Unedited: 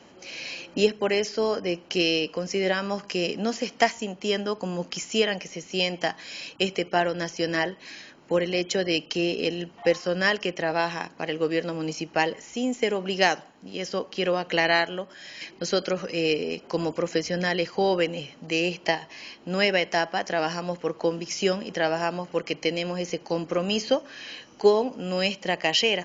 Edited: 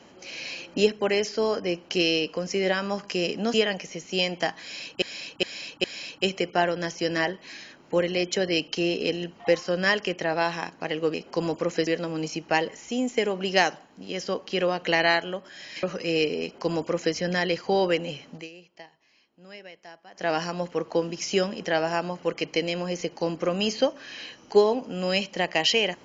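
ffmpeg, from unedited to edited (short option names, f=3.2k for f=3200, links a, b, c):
-filter_complex "[0:a]asplit=10[a][b][c][d][e][f][g][h][i][j];[a]atrim=end=3.542[k];[b]atrim=start=5.148:end=6.632[l];[c]atrim=start=6.218:end=6.632[m];[d]atrim=start=6.218:end=6.632[n];[e]atrim=start=6.218:end=11.522[o];[f]atrim=start=16.508:end=17.242[p];[g]atrim=start=11.518:end=15.482[q];[h]atrim=start=15.918:end=18.6,asetpts=PTS-STARTPTS,afade=t=out:st=2.522:d=0.16:c=qua:silence=0.0794328[r];[i]atrim=start=18.6:end=20.19,asetpts=PTS-STARTPTS,volume=-22dB[s];[j]atrim=start=20.19,asetpts=PTS-STARTPTS,afade=t=in:d=0.16:c=qua:silence=0.0794328[t];[k][l]acrossfade=d=0.004:c1=hsin:c2=hsin[u];[u][m]acrossfade=d=0.004:c1=hsin:c2=hsin[v];[v][n]acrossfade=d=0.004:c1=hsin:c2=hsin[w];[w][o]acrossfade=d=0.004:c1=hsin:c2=hsin[x];[x][p]acrossfade=d=0.004:c1=hsin:c2=hsin[y];[y][q]acrossfade=d=0.004:c1=hsin:c2=hsin[z];[r][s][t]concat=n=3:v=0:a=1[aa];[z][aa]acrossfade=d=0.004:c1=hsin:c2=hsin"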